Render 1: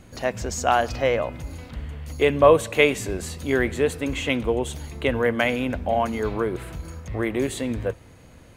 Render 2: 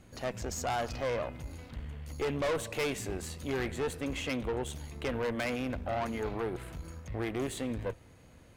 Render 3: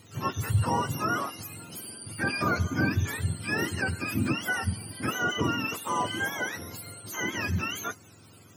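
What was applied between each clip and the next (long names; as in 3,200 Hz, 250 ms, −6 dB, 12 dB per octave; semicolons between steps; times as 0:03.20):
tube saturation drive 23 dB, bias 0.6; level −5 dB
frequency axis turned over on the octave scale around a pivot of 830 Hz; level +6.5 dB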